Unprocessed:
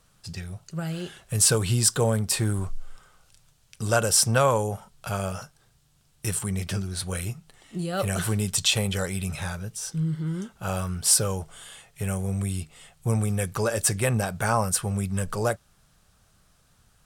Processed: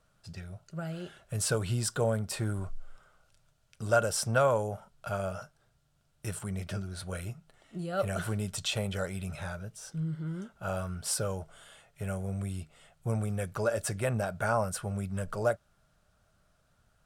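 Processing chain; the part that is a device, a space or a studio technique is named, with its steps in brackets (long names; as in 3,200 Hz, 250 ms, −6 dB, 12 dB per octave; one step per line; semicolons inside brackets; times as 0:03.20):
inside a helmet (high-shelf EQ 3,700 Hz −7 dB; hollow resonant body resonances 620/1,400 Hz, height 9 dB, ringing for 30 ms)
level −7 dB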